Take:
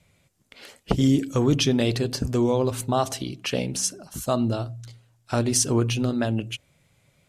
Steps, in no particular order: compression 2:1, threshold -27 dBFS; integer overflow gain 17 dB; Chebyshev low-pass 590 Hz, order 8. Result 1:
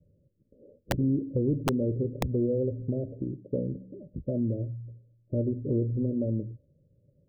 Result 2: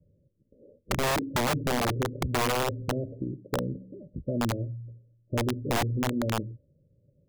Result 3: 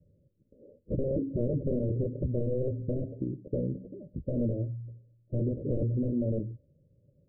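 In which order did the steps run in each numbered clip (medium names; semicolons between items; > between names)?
Chebyshev low-pass > compression > integer overflow; Chebyshev low-pass > integer overflow > compression; integer overflow > Chebyshev low-pass > compression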